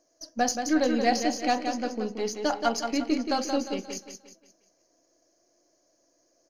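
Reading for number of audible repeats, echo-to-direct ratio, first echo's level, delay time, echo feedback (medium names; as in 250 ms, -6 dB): 4, -6.0 dB, -6.5 dB, 177 ms, 39%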